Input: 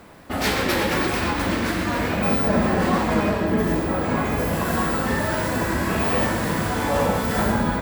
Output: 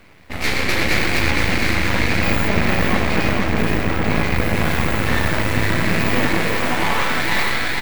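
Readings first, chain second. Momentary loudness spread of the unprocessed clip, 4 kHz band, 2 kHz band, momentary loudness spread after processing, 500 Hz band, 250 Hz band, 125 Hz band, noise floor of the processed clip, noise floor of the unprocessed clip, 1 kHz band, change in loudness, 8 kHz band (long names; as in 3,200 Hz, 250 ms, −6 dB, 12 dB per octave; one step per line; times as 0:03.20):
3 LU, +6.5 dB, +7.0 dB, 2 LU, −0.5 dB, +0.5 dB, +4.0 dB, −26 dBFS, −25 dBFS, +0.5 dB, +3.0 dB, +2.0 dB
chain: automatic gain control gain up to 5 dB
high-pass filter sweep 64 Hz → 2,000 Hz, 0:05.45–0:07.34
parametric band 2,200 Hz +14 dB 0.73 octaves
hum removal 69.03 Hz, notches 30
on a send: repeating echo 461 ms, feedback 51%, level −4 dB
on the sum: half-wave rectification
low-shelf EQ 390 Hz +4 dB
level −3.5 dB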